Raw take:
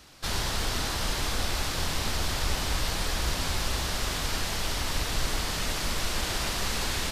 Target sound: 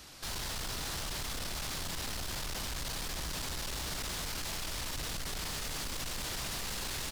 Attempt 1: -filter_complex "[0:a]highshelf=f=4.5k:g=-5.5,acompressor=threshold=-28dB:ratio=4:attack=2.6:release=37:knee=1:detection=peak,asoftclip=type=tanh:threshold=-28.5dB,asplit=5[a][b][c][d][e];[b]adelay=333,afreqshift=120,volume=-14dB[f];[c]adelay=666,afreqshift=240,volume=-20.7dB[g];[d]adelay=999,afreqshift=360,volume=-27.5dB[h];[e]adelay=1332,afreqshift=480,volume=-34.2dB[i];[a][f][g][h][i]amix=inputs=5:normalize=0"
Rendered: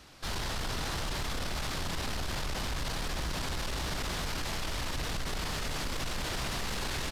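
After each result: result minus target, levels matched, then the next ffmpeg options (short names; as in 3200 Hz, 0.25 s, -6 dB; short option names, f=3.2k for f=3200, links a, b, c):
soft clip: distortion -7 dB; 8000 Hz band -4.0 dB
-filter_complex "[0:a]highshelf=f=4.5k:g=-5.5,acompressor=threshold=-28dB:ratio=4:attack=2.6:release=37:knee=1:detection=peak,asoftclip=type=tanh:threshold=-35.5dB,asplit=5[a][b][c][d][e];[b]adelay=333,afreqshift=120,volume=-14dB[f];[c]adelay=666,afreqshift=240,volume=-20.7dB[g];[d]adelay=999,afreqshift=360,volume=-27.5dB[h];[e]adelay=1332,afreqshift=480,volume=-34.2dB[i];[a][f][g][h][i]amix=inputs=5:normalize=0"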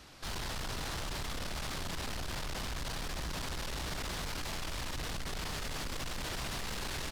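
8000 Hz band -3.5 dB
-filter_complex "[0:a]highshelf=f=4.5k:g=5,acompressor=threshold=-28dB:ratio=4:attack=2.6:release=37:knee=1:detection=peak,asoftclip=type=tanh:threshold=-35.5dB,asplit=5[a][b][c][d][e];[b]adelay=333,afreqshift=120,volume=-14dB[f];[c]adelay=666,afreqshift=240,volume=-20.7dB[g];[d]adelay=999,afreqshift=360,volume=-27.5dB[h];[e]adelay=1332,afreqshift=480,volume=-34.2dB[i];[a][f][g][h][i]amix=inputs=5:normalize=0"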